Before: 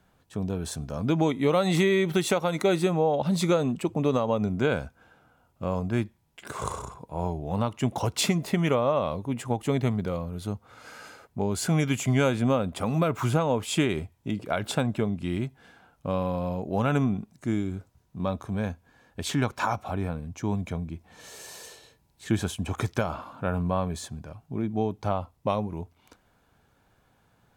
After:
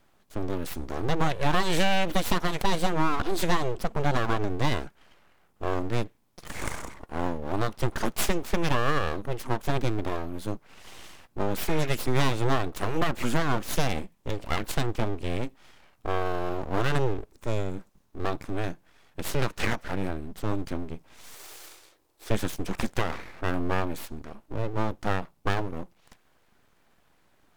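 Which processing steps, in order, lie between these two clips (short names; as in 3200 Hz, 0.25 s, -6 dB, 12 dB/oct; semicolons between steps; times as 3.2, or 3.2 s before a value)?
11.61–11.84 spectral repair 780–2600 Hz after; full-wave rectifier; 21.34–22.31 resonant low shelf 270 Hz -7 dB, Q 3; gain +2 dB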